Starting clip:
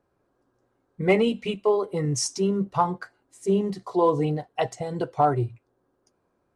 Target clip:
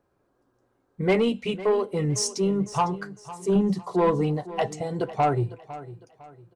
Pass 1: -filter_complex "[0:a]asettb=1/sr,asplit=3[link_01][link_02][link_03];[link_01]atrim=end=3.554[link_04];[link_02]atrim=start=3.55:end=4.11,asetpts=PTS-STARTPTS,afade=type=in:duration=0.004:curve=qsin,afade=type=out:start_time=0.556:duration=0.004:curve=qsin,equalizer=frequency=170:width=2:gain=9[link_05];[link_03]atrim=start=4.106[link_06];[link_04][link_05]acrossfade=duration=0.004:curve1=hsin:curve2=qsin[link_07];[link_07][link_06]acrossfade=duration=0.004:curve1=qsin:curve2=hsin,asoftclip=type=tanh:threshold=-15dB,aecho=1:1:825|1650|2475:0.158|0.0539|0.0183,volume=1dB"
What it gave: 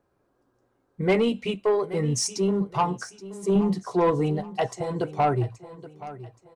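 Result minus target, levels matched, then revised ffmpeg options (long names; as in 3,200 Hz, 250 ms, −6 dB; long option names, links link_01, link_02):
echo 321 ms late
-filter_complex "[0:a]asettb=1/sr,asplit=3[link_01][link_02][link_03];[link_01]atrim=end=3.554[link_04];[link_02]atrim=start=3.55:end=4.11,asetpts=PTS-STARTPTS,afade=type=in:duration=0.004:curve=qsin,afade=type=out:start_time=0.556:duration=0.004:curve=qsin,equalizer=frequency=170:width=2:gain=9[link_05];[link_03]atrim=start=4.106[link_06];[link_04][link_05]acrossfade=duration=0.004:curve1=hsin:curve2=qsin[link_07];[link_07][link_06]acrossfade=duration=0.004:curve1=qsin:curve2=hsin,asoftclip=type=tanh:threshold=-15dB,aecho=1:1:504|1008|1512:0.158|0.0539|0.0183,volume=1dB"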